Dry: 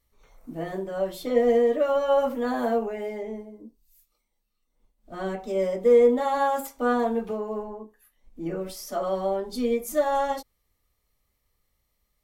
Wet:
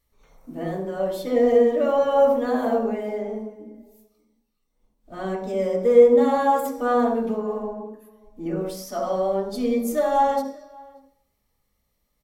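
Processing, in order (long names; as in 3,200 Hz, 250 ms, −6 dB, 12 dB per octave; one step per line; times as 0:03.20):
slap from a distant wall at 100 metres, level −24 dB
on a send at −3.5 dB: convolution reverb RT60 0.50 s, pre-delay 51 ms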